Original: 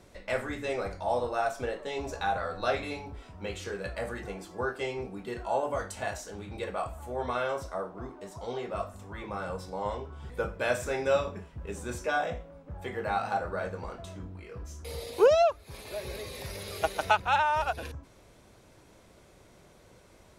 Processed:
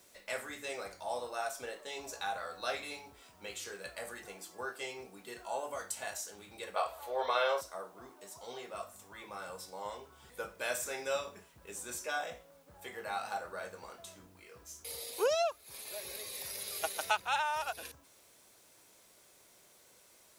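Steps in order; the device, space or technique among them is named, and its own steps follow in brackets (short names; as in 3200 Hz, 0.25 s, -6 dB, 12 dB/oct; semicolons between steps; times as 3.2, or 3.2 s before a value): turntable without a phono preamp (RIAA curve recording; white noise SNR 30 dB); 6.76–7.61 graphic EQ 125/250/500/1000/2000/4000/8000 Hz -8/-7/+11/+6/+4/+11/-9 dB; gain -7.5 dB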